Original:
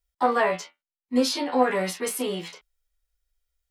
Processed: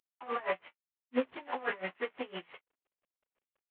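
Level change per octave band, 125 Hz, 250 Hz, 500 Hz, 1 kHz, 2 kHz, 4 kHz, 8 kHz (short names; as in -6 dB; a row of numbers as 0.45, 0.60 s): -16.5 dB, -14.5 dB, -11.5 dB, -13.5 dB, -8.0 dB, -16.5 dB, under -40 dB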